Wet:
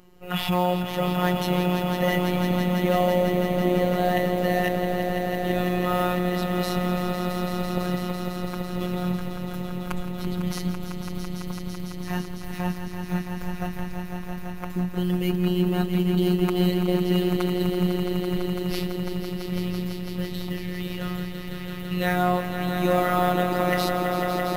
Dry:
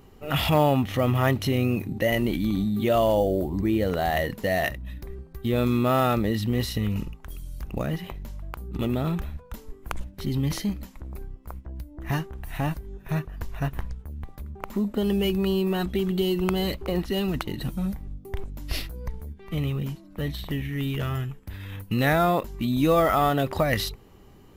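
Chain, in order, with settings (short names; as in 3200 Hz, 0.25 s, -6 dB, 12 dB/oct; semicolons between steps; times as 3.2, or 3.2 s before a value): swelling echo 0.167 s, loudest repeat 5, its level -9 dB; robotiser 179 Hz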